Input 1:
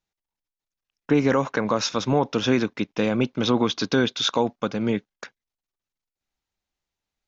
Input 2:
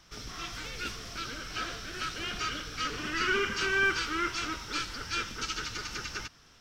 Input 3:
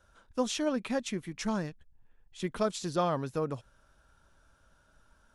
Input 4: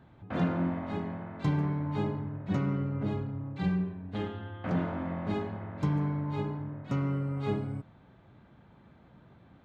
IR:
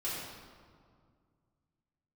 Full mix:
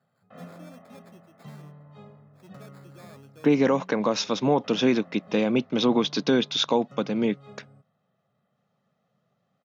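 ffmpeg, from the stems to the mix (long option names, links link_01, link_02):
-filter_complex "[0:a]lowpass=5800,equalizer=frequency=1400:width=2.1:gain=-6.5,adelay=2350,volume=0dB[link_01];[2:a]acrusher=samples=15:mix=1:aa=0.000001,asoftclip=type=hard:threshold=-29.5dB,volume=-16.5dB[link_02];[3:a]bandreject=frequency=2300:width=7.9,aecho=1:1:1.6:0.91,volume=-15.5dB[link_03];[link_01][link_02][link_03]amix=inputs=3:normalize=0,highpass=frequency=150:width=0.5412,highpass=frequency=150:width=1.3066"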